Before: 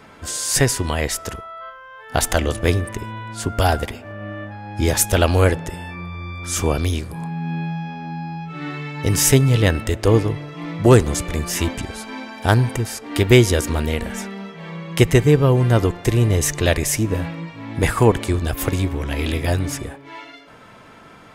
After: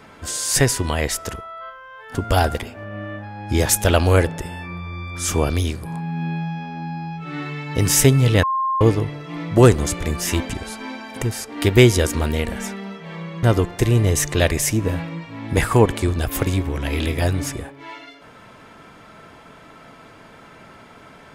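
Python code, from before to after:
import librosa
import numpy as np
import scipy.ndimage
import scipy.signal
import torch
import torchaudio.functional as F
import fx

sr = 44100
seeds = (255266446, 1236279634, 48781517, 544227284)

y = fx.edit(x, sr, fx.cut(start_s=2.15, length_s=1.28),
    fx.bleep(start_s=9.71, length_s=0.38, hz=1060.0, db=-18.0),
    fx.cut(start_s=12.44, length_s=0.26),
    fx.cut(start_s=14.97, length_s=0.72), tone=tone)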